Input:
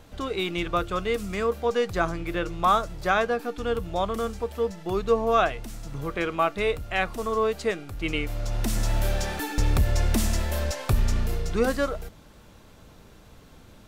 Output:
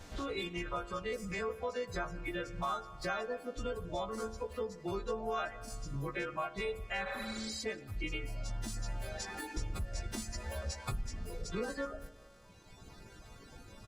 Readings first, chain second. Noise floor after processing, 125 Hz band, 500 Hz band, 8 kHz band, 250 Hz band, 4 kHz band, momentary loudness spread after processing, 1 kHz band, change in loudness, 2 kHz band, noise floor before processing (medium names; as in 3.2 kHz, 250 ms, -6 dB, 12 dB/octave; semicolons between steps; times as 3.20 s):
-56 dBFS, -14.0 dB, -13.0 dB, -9.5 dB, -12.0 dB, -9.5 dB, 16 LU, -13.5 dB, -13.0 dB, -10.5 dB, -51 dBFS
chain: partials quantised in pitch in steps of 2 st; reverb removal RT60 1.6 s; band-stop 3 kHz, Q 7.2; spectral replace 7.09–7.56 s, 430–9300 Hz both; bass shelf 150 Hz +4 dB; compression 4:1, threshold -38 dBFS, peak gain reduction 18 dB; distance through air 62 m; on a send: delay 176 ms -23 dB; on the sum: spring tank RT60 1.8 s, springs 43/50 ms, chirp 65 ms, DRR 13 dB; trim +1 dB; Opus 16 kbps 48 kHz